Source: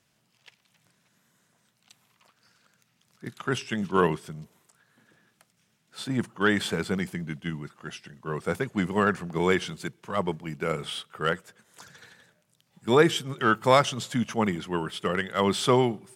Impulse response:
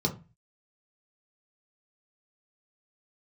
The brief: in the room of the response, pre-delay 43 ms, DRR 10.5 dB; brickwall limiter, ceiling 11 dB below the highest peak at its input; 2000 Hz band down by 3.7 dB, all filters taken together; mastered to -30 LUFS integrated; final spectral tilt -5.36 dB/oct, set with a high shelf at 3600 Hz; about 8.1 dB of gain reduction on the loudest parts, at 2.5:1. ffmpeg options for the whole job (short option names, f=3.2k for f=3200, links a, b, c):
-filter_complex "[0:a]equalizer=f=2k:t=o:g=-4,highshelf=f=3.6k:g=-4.5,acompressor=threshold=-26dB:ratio=2.5,alimiter=level_in=1dB:limit=-24dB:level=0:latency=1,volume=-1dB,asplit=2[a][b];[1:a]atrim=start_sample=2205,adelay=43[c];[b][c]afir=irnorm=-1:irlink=0,volume=-18dB[d];[a][d]amix=inputs=2:normalize=0,volume=5dB"